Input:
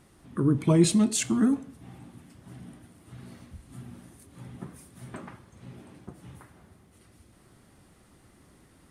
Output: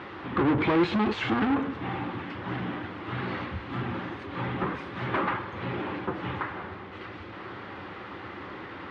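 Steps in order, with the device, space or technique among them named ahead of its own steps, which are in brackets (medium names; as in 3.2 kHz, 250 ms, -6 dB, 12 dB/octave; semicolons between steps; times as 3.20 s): overdrive pedal into a guitar cabinet (overdrive pedal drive 39 dB, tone 1.2 kHz, clips at -9 dBFS; cabinet simulation 78–3600 Hz, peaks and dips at 94 Hz +4 dB, 150 Hz -10 dB, 240 Hz -9 dB, 430 Hz -3 dB, 660 Hz -9 dB); trim -3 dB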